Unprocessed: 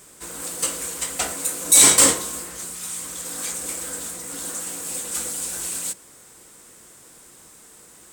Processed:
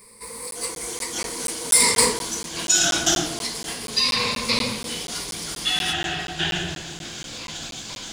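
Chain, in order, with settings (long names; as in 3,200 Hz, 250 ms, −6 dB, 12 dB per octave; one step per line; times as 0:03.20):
pitch glide at a constant tempo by −6 semitones starting unshifted
EQ curve with evenly spaced ripples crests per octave 0.91, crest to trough 18 dB
delay with pitch and tempo change per echo 263 ms, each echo −6 semitones, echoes 3
regular buffer underruns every 0.24 s, samples 512, zero, from 0:00.51
level −4 dB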